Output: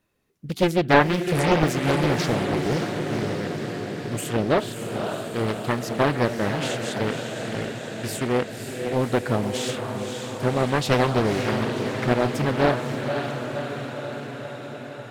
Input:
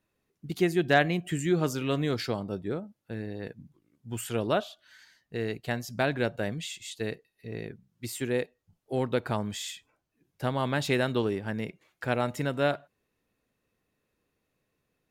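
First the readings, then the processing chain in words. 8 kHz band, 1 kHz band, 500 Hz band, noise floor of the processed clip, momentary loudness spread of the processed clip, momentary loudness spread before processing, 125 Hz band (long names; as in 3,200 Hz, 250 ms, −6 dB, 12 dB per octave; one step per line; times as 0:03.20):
+6.5 dB, +8.5 dB, +7.0 dB, −37 dBFS, 11 LU, 13 LU, +7.5 dB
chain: feedback delay with all-pass diffusion 544 ms, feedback 71%, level −6 dB
highs frequency-modulated by the lows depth 0.83 ms
level +5.5 dB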